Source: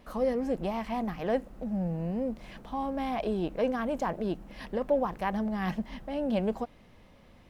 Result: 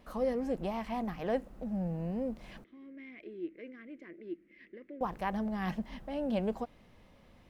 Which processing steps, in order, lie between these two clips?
2.64–5.01 s: two resonant band-passes 840 Hz, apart 2.6 oct; trim -3.5 dB

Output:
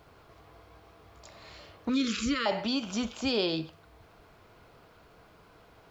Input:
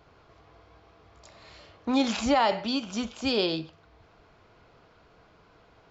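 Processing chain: 1.89–2.46 s: elliptic band-stop 480–1200 Hz, stop band 40 dB; in parallel at +1 dB: peak limiter -25.5 dBFS, peak gain reduction 10.5 dB; on the sum: bit crusher 11-bit; trim -5.5 dB

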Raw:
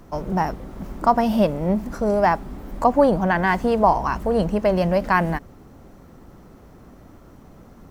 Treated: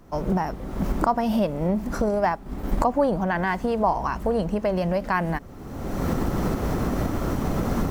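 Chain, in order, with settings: recorder AGC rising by 34 dB/s; 2.06–2.83 s: transient shaper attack +4 dB, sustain -5 dB; trim -5.5 dB

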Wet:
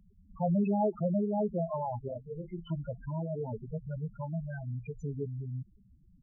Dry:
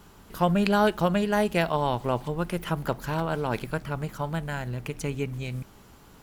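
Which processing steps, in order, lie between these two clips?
loudest bins only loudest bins 4; 2.08–2.70 s: detune thickener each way 33 cents; trim -3.5 dB

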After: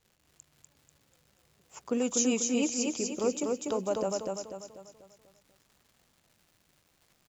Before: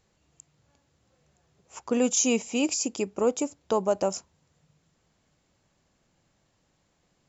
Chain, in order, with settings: rotary cabinet horn 6.7 Hz, later 0.75 Hz, at 3.59 s; crackle 230 per s -49 dBFS; feedback delay 245 ms, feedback 44%, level -3 dB; trim -3.5 dB

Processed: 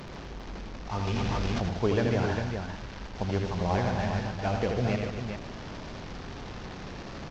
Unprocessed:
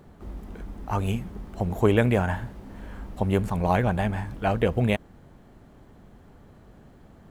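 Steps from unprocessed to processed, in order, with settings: one-bit delta coder 32 kbps, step -29.5 dBFS; multi-tap echo 81/147/249/400 ms -5/-10/-11/-7 dB; 1.07–1.69 s: level flattener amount 100%; trim -6.5 dB

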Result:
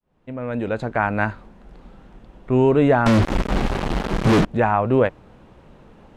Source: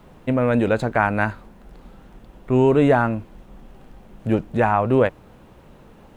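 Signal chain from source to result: fade-in on the opening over 1.23 s; 3.06–4.45 s: fuzz box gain 49 dB, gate -43 dBFS; distance through air 56 m

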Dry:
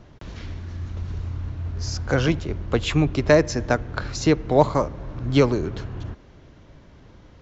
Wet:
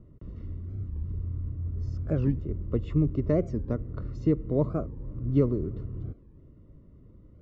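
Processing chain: boxcar filter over 55 samples; warped record 45 rpm, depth 250 cents; trim -3 dB

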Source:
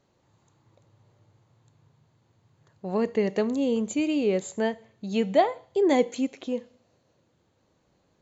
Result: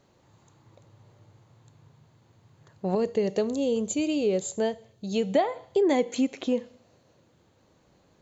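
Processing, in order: 2.95–5.35 s: graphic EQ 250/1000/2000 Hz -8/-7/-10 dB; compression 4:1, threshold -26 dBFS, peak gain reduction 10 dB; trim +5.5 dB

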